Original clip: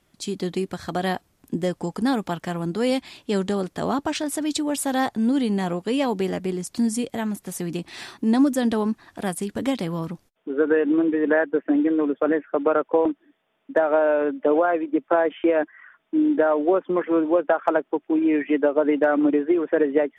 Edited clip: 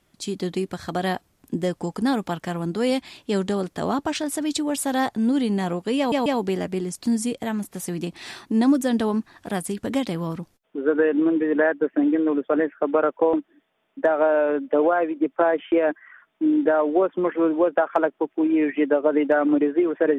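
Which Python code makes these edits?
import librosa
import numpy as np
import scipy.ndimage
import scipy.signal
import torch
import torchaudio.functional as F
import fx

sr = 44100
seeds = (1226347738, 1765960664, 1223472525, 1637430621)

y = fx.edit(x, sr, fx.stutter(start_s=5.98, slice_s=0.14, count=3), tone=tone)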